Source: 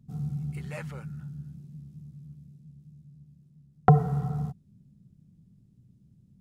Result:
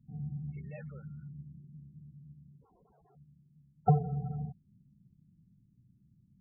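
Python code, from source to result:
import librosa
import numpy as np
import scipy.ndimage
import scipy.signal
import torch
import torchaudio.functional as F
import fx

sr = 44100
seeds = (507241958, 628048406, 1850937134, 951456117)

y = fx.overflow_wrap(x, sr, gain_db=52.0, at=(2.61, 3.15), fade=0.02)
y = fx.spec_topn(y, sr, count=16)
y = y * 10.0 ** (-6.5 / 20.0)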